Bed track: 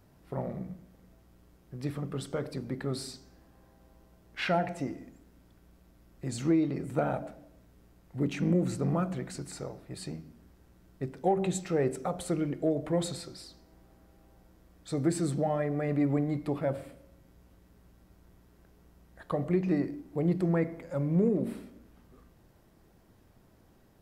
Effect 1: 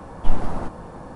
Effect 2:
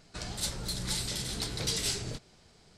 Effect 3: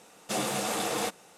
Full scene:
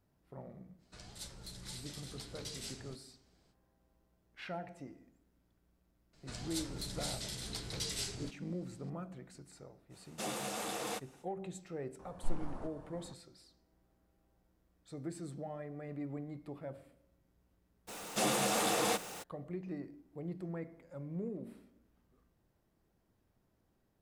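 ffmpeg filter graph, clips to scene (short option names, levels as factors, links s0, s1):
-filter_complex "[2:a]asplit=2[s0][s1];[3:a]asplit=2[s2][s3];[0:a]volume=0.188[s4];[s3]aeval=exprs='val(0)+0.5*0.01*sgn(val(0))':c=same[s5];[s0]atrim=end=2.77,asetpts=PTS-STARTPTS,volume=0.2,afade=t=in:d=0.05,afade=t=out:st=2.72:d=0.05,adelay=780[s6];[s1]atrim=end=2.77,asetpts=PTS-STARTPTS,volume=0.422,afade=t=in:d=0.004:c=hsin,afade=t=out:st=2.766:d=0.004:c=hsin,adelay=6130[s7];[s2]atrim=end=1.37,asetpts=PTS-STARTPTS,volume=0.355,afade=t=in:d=0.05,afade=t=out:st=1.32:d=0.05,adelay=9890[s8];[1:a]atrim=end=1.15,asetpts=PTS-STARTPTS,volume=0.133,afade=t=in:d=0.004:c=hsin,afade=t=out:st=1.146:d=0.004:c=hsin,adelay=11990[s9];[s5]atrim=end=1.37,asetpts=PTS-STARTPTS,volume=0.75,afade=t=in:d=0.02,afade=t=out:st=1.35:d=0.02,adelay=17870[s10];[s4][s6][s7][s8][s9][s10]amix=inputs=6:normalize=0"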